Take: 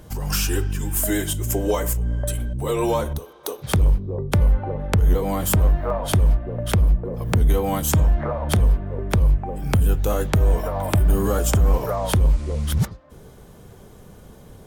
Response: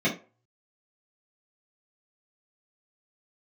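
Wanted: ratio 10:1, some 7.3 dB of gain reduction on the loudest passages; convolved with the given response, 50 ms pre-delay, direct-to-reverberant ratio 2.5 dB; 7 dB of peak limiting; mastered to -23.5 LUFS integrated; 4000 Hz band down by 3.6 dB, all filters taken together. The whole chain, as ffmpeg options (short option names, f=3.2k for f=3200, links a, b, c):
-filter_complex "[0:a]equalizer=f=4k:t=o:g=-5,acompressor=threshold=-20dB:ratio=10,alimiter=limit=-17.5dB:level=0:latency=1,asplit=2[a][b];[1:a]atrim=start_sample=2205,adelay=50[c];[b][c]afir=irnorm=-1:irlink=0,volume=-15.5dB[d];[a][d]amix=inputs=2:normalize=0,volume=2dB"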